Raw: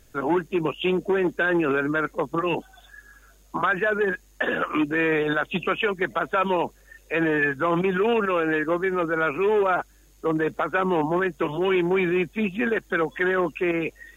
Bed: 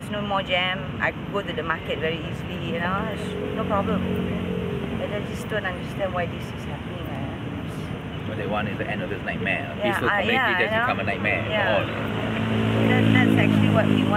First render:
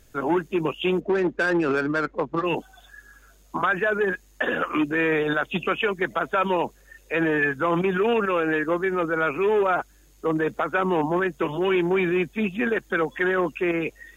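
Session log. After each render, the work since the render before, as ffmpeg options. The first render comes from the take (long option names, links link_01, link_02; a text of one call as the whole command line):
ffmpeg -i in.wav -filter_complex "[0:a]asplit=3[link_01][link_02][link_03];[link_01]afade=type=out:start_time=0.99:duration=0.02[link_04];[link_02]adynamicsmooth=sensitivity=2.5:basefreq=1900,afade=type=in:start_time=0.99:duration=0.02,afade=type=out:start_time=2.44:duration=0.02[link_05];[link_03]afade=type=in:start_time=2.44:duration=0.02[link_06];[link_04][link_05][link_06]amix=inputs=3:normalize=0" out.wav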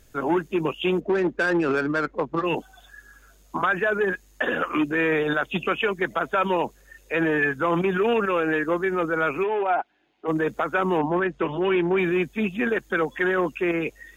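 ffmpeg -i in.wav -filter_complex "[0:a]asplit=3[link_01][link_02][link_03];[link_01]afade=type=out:start_time=9.43:duration=0.02[link_04];[link_02]highpass=350,equalizer=frequency=500:width_type=q:width=4:gain=-10,equalizer=frequency=760:width_type=q:width=4:gain=7,equalizer=frequency=1200:width_type=q:width=4:gain=-8,equalizer=frequency=1800:width_type=q:width=4:gain=-4,lowpass=frequency=3100:width=0.5412,lowpass=frequency=3100:width=1.3066,afade=type=in:start_time=9.43:duration=0.02,afade=type=out:start_time=10.27:duration=0.02[link_05];[link_03]afade=type=in:start_time=10.27:duration=0.02[link_06];[link_04][link_05][link_06]amix=inputs=3:normalize=0,asettb=1/sr,asplit=3[link_07][link_08][link_09];[link_07]atrim=end=10.984[link_10];[link_08]atrim=start=10.98:end=11.98,asetpts=PTS-STARTPTS,afade=type=in:duration=0.004:curve=qsin,afade=type=out:start_time=0.996:duration=0.004:curve=qsin,lowpass=3600[link_11];[link_09]atrim=start=11.976[link_12];[link_10][link_11]acrossfade=duration=0.004:curve1=hsin:curve2=qsin[link_13];[link_13][link_12]acrossfade=duration=0.004:curve1=qsin:curve2=hsin" out.wav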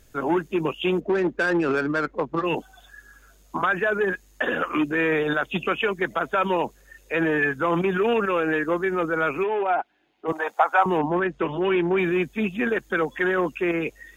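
ffmpeg -i in.wav -filter_complex "[0:a]asettb=1/sr,asplit=3[link_01][link_02][link_03];[link_01]atrim=end=10.324[link_04];[link_02]atrim=start=10.32:end=10.86,asetpts=PTS-STARTPTS,afade=type=in:duration=0.004:curve=qsin,afade=type=out:start_time=0.536:duration=0.004:curve=qsin,highpass=frequency=800:width_type=q:width=4.5[link_05];[link_03]atrim=start=10.856[link_06];[link_04][link_05]acrossfade=duration=0.004:curve1=hsin:curve2=qsin[link_07];[link_07][link_06]acrossfade=duration=0.004:curve1=qsin:curve2=hsin" out.wav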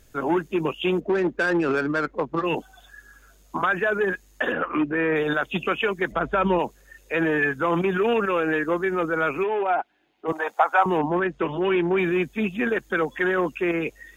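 ffmpeg -i in.wav -filter_complex "[0:a]asettb=1/sr,asplit=3[link_01][link_02][link_03];[link_01]atrim=end=4.524[link_04];[link_02]atrim=start=4.52:end=5.16,asetpts=PTS-STARTPTS,afade=type=in:duration=0.004:curve=qsin,afade=type=out:start_time=0.636:duration=0.004:curve=qsin,lowpass=2100[link_05];[link_03]atrim=start=5.156[link_06];[link_04][link_05]acrossfade=duration=0.004:curve1=hsin:curve2=qsin[link_07];[link_07][link_06]acrossfade=duration=0.004:curve1=qsin:curve2=hsin,asplit=3[link_08][link_09][link_10];[link_08]afade=type=out:start_time=6.11:duration=0.02[link_11];[link_09]aemphasis=mode=reproduction:type=bsi,afade=type=in:start_time=6.11:duration=0.02,afade=type=out:start_time=6.58:duration=0.02[link_12];[link_10]afade=type=in:start_time=6.58:duration=0.02[link_13];[link_11][link_12][link_13]amix=inputs=3:normalize=0" out.wav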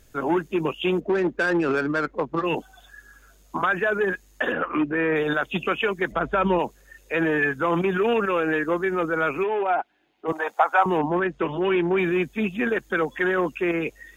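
ffmpeg -i in.wav -af anull out.wav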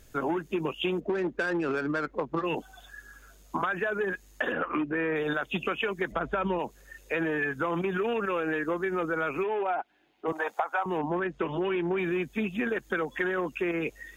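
ffmpeg -i in.wav -af "acompressor=threshold=-26dB:ratio=6" out.wav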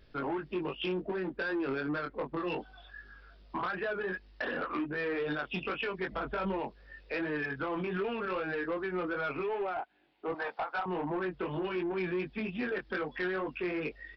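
ffmpeg -i in.wav -af "flanger=delay=20:depth=2.3:speed=2.6,aresample=11025,asoftclip=type=tanh:threshold=-27dB,aresample=44100" out.wav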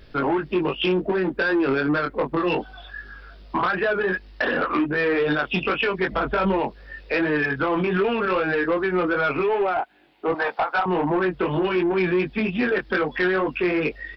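ffmpeg -i in.wav -af "volume=12dB" out.wav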